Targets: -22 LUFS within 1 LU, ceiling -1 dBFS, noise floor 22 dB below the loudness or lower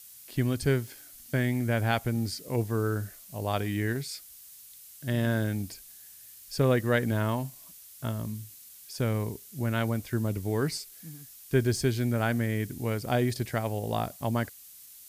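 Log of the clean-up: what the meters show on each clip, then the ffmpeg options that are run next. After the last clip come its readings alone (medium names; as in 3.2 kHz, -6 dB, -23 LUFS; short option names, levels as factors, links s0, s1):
noise floor -50 dBFS; noise floor target -52 dBFS; loudness -30.0 LUFS; peak level -12.5 dBFS; loudness target -22.0 LUFS
-> -af "afftdn=nr=6:nf=-50"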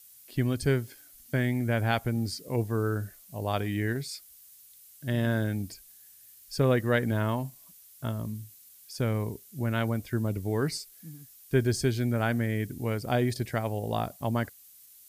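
noise floor -54 dBFS; loudness -30.0 LUFS; peak level -12.5 dBFS; loudness target -22.0 LUFS
-> -af "volume=2.51"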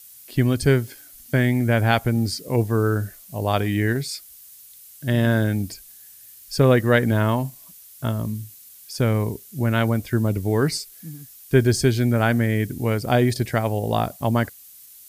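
loudness -22.0 LUFS; peak level -4.5 dBFS; noise floor -46 dBFS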